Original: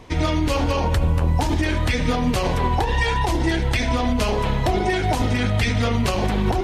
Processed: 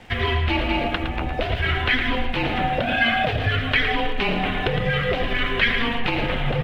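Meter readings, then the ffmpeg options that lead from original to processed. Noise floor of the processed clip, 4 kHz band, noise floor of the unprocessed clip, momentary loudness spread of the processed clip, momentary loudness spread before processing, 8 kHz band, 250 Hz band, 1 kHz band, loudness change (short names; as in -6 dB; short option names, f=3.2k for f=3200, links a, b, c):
-27 dBFS, +3.5 dB, -23 dBFS, 4 LU, 1 LU, under -15 dB, -4.5 dB, -1.5 dB, -1.0 dB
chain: -af "lowshelf=f=360:g=6.5,highpass=f=200:t=q:w=0.5412,highpass=f=200:t=q:w=1.307,lowpass=f=3.3k:t=q:w=0.5176,lowpass=f=3.3k:t=q:w=0.7071,lowpass=f=3.3k:t=q:w=1.932,afreqshift=-230,acompressor=threshold=-20dB:ratio=6,crystalizer=i=7.5:c=0,aecho=1:1:112:0.398,aeval=exprs='sgn(val(0))*max(abs(val(0))-0.00251,0)':c=same"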